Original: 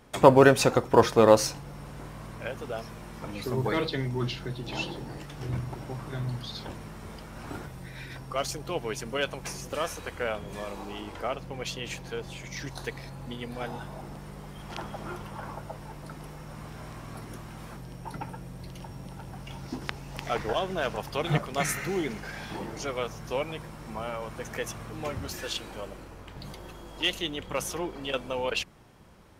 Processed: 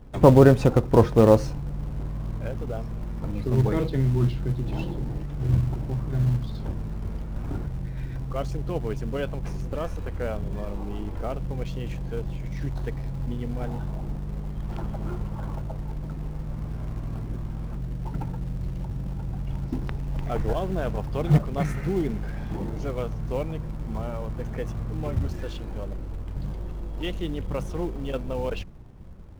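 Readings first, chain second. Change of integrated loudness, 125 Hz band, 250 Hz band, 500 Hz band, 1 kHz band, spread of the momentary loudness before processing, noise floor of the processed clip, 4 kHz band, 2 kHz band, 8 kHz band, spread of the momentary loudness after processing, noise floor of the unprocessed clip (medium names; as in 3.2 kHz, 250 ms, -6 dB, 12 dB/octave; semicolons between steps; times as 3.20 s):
+2.0 dB, +10.0 dB, +5.5 dB, +1.5 dB, -3.0 dB, 15 LU, -34 dBFS, -10.0 dB, -7.0 dB, under -10 dB, 12 LU, -45 dBFS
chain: tilt EQ -4.5 dB/octave; in parallel at -11.5 dB: companded quantiser 4-bit; on the sum: trim -5.5 dB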